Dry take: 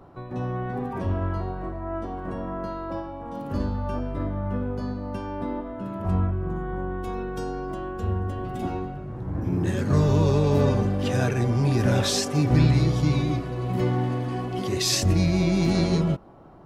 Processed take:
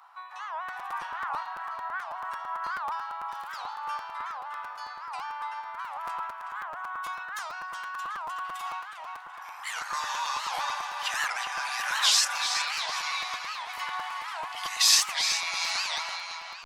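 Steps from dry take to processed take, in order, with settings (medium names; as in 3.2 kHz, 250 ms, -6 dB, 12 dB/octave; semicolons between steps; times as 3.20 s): steep high-pass 880 Hz 48 dB/octave; on a send: filtered feedback delay 371 ms, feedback 54%, low-pass 4.9 kHz, level -5 dB; on the sum: crackling interface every 0.11 s, samples 256, repeat, from 0.68 s; warped record 78 rpm, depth 250 cents; trim +4.5 dB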